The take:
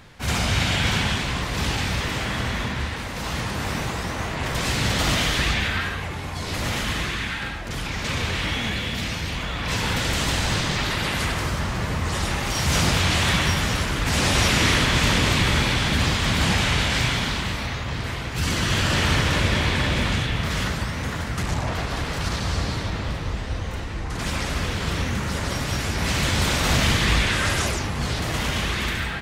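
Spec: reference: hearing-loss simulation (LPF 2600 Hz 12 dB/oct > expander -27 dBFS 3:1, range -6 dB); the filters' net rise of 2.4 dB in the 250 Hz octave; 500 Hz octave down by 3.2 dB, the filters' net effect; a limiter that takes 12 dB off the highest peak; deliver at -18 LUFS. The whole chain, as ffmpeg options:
-af "equalizer=f=250:t=o:g=4.5,equalizer=f=500:t=o:g=-5.5,alimiter=limit=-18.5dB:level=0:latency=1,lowpass=2.6k,agate=range=-6dB:threshold=-27dB:ratio=3,volume=11dB"

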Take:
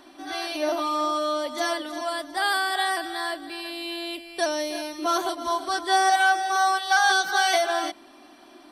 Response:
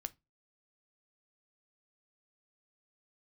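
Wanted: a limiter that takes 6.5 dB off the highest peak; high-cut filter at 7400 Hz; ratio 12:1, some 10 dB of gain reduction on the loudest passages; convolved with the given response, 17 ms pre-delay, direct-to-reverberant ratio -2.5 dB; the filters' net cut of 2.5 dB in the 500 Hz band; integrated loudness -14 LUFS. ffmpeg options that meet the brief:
-filter_complex "[0:a]lowpass=7.4k,equalizer=f=500:t=o:g=-4,acompressor=threshold=-27dB:ratio=12,alimiter=level_in=0.5dB:limit=-24dB:level=0:latency=1,volume=-0.5dB,asplit=2[a][b];[1:a]atrim=start_sample=2205,adelay=17[c];[b][c]afir=irnorm=-1:irlink=0,volume=5dB[d];[a][d]amix=inputs=2:normalize=0,volume=14.5dB"

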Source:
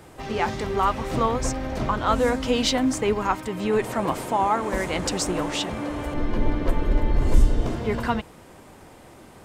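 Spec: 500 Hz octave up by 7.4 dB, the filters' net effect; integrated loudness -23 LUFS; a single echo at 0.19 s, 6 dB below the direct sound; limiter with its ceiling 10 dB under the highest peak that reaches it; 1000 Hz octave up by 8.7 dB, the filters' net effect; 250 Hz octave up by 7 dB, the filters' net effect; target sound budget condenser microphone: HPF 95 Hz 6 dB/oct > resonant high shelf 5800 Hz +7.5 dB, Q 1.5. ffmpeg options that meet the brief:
-af "equalizer=f=250:t=o:g=7,equalizer=f=500:t=o:g=5,equalizer=f=1k:t=o:g=9,alimiter=limit=-11dB:level=0:latency=1,highpass=f=95:p=1,highshelf=f=5.8k:t=q:w=1.5:g=7.5,aecho=1:1:190:0.501,volume=-2.5dB"

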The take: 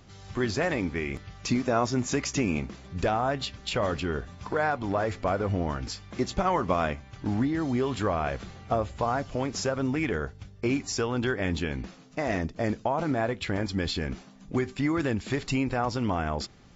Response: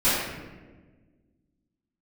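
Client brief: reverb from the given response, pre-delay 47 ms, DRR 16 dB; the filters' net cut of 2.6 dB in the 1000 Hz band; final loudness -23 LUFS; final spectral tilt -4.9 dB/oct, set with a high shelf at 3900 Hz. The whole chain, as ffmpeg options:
-filter_complex "[0:a]equalizer=f=1k:t=o:g=-4,highshelf=f=3.9k:g=4.5,asplit=2[a][b];[1:a]atrim=start_sample=2205,adelay=47[c];[b][c]afir=irnorm=-1:irlink=0,volume=-33dB[d];[a][d]amix=inputs=2:normalize=0,volume=6.5dB"

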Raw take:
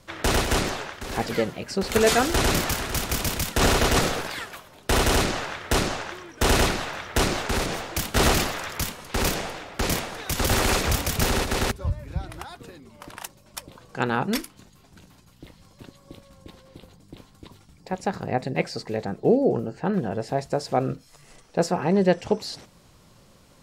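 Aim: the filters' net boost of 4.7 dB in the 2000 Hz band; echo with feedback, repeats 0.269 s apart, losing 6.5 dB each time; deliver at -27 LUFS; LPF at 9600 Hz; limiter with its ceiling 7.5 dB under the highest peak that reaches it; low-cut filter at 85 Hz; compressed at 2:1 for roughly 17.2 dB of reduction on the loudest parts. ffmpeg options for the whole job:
-af "highpass=85,lowpass=9.6k,equalizer=f=2k:t=o:g=6,acompressor=threshold=-48dB:ratio=2,alimiter=level_in=4.5dB:limit=-24dB:level=0:latency=1,volume=-4.5dB,aecho=1:1:269|538|807|1076|1345|1614:0.473|0.222|0.105|0.0491|0.0231|0.0109,volume=12.5dB"

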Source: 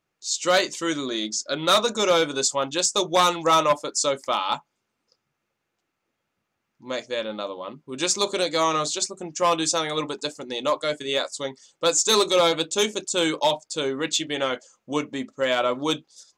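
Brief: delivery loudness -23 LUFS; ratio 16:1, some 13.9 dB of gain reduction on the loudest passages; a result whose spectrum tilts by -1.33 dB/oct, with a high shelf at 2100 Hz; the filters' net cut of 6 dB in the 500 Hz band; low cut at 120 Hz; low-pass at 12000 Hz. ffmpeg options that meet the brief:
-af "highpass=120,lowpass=12k,equalizer=f=500:t=o:g=-7.5,highshelf=f=2.1k:g=3.5,acompressor=threshold=-28dB:ratio=16,volume=9.5dB"

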